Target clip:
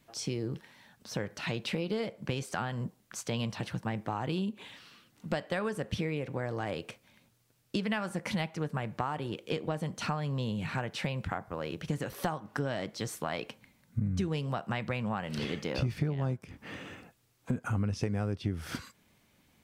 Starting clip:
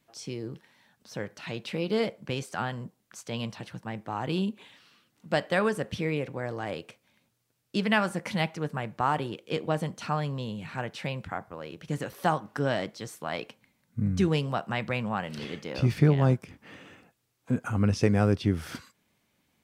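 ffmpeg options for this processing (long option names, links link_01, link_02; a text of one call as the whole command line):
ffmpeg -i in.wav -af "acompressor=threshold=-35dB:ratio=6,lowshelf=frequency=80:gain=8,volume=4.5dB" out.wav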